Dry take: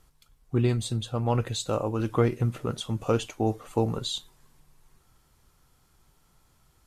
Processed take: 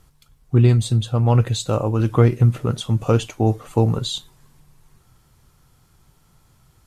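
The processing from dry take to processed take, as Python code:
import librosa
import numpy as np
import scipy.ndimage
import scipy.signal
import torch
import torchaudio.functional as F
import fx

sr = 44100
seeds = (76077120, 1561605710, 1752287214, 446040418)

y = fx.peak_eq(x, sr, hz=120.0, db=7.0, octaves=1.3)
y = y * librosa.db_to_amplitude(5.0)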